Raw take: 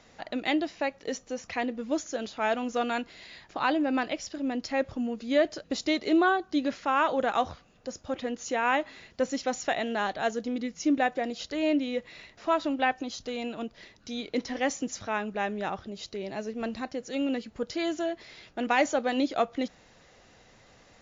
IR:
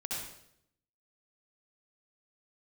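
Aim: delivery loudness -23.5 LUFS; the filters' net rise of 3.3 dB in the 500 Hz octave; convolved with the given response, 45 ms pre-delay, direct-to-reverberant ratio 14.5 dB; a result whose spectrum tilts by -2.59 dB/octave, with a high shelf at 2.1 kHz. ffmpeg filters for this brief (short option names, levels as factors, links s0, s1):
-filter_complex "[0:a]equalizer=f=500:t=o:g=3.5,highshelf=f=2100:g=6.5,asplit=2[s0][s1];[1:a]atrim=start_sample=2205,adelay=45[s2];[s1][s2]afir=irnorm=-1:irlink=0,volume=0.141[s3];[s0][s3]amix=inputs=2:normalize=0,volume=1.5"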